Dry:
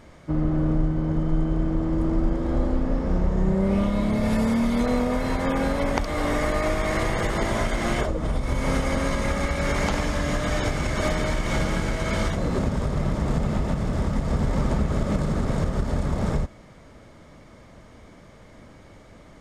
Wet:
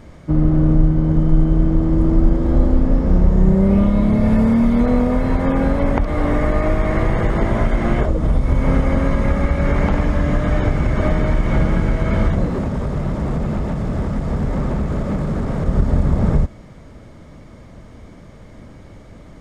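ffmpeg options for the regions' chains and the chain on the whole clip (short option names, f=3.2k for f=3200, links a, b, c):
-filter_complex "[0:a]asettb=1/sr,asplit=3[a][b][c];[a]atrim=end=12.454[d];[b]atrim=start=12.45:end=15.67,asetpts=PTS-STARTPTS,afade=t=in:d=0.004:c=qsin,afade=t=out:st=3.216:d=0.004:c=qsin,lowshelf=f=190:g=-6.5,volume=23.5dB,asoftclip=hard,volume=-23.5dB[e];[c]atrim=start=15.666[f];[d][e]acrossfade=d=0.004:c1=hsin:c2=qsin[g];[g][f]acrossfade=d=0.004:c1=qsin:c2=hsin,lowshelf=f=370:g=8,acrossover=split=2600[h][i];[i]acompressor=threshold=-51dB:ratio=4:attack=1:release=60[j];[h][j]amix=inputs=2:normalize=0,volume=2dB"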